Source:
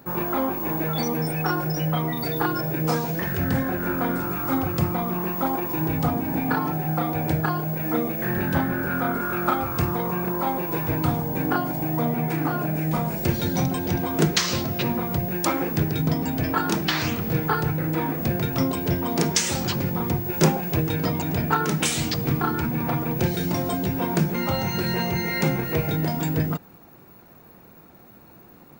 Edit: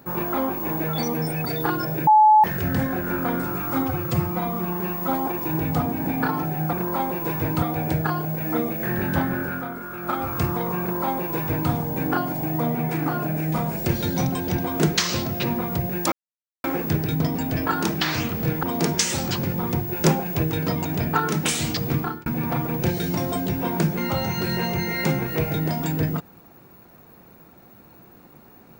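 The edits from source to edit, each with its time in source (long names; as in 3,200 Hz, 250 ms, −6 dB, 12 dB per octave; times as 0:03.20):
0:01.45–0:02.21: remove
0:02.83–0:03.20: beep over 858 Hz −10 dBFS
0:04.59–0:05.55: time-stretch 1.5×
0:08.77–0:09.68: duck −8 dB, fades 0.30 s
0:10.20–0:11.09: duplicate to 0:07.01
0:15.51: splice in silence 0.52 s
0:17.50–0:19.00: remove
0:22.34–0:22.63: fade out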